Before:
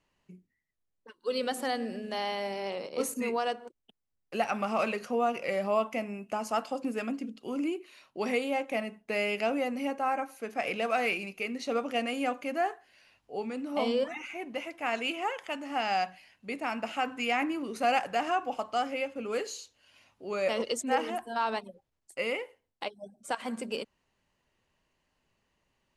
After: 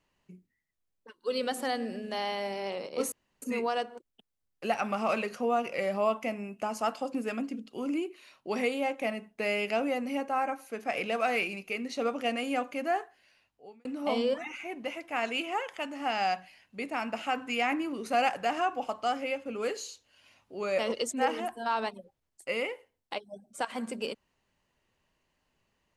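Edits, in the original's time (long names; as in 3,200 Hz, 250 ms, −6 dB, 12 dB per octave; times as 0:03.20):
0:03.12: splice in room tone 0.30 s
0:12.68–0:13.55: fade out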